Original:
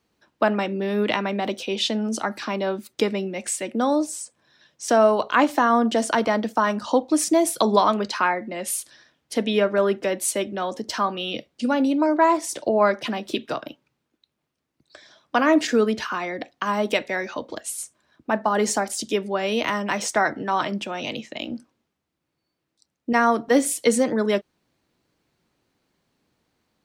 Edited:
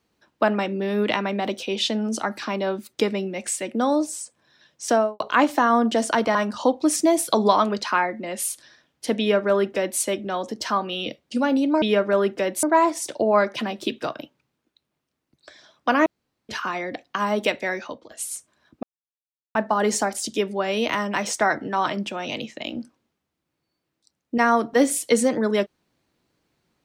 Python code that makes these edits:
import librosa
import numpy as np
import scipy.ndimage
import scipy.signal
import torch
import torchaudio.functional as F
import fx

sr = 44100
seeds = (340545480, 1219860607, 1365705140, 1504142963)

y = fx.studio_fade_out(x, sr, start_s=4.89, length_s=0.31)
y = fx.edit(y, sr, fx.cut(start_s=6.35, length_s=0.28),
    fx.duplicate(start_s=9.47, length_s=0.81, to_s=12.1),
    fx.room_tone_fill(start_s=15.53, length_s=0.43),
    fx.fade_out_to(start_s=17.22, length_s=0.36, floor_db=-17.0),
    fx.insert_silence(at_s=18.3, length_s=0.72), tone=tone)